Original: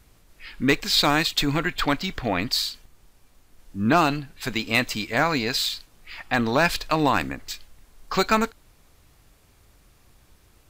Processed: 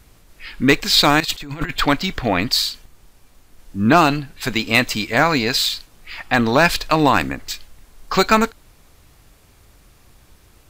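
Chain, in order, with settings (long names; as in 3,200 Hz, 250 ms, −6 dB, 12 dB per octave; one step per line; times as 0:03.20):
0:01.20–0:01.71: compressor whose output falls as the input rises −30 dBFS, ratio −0.5
level +6 dB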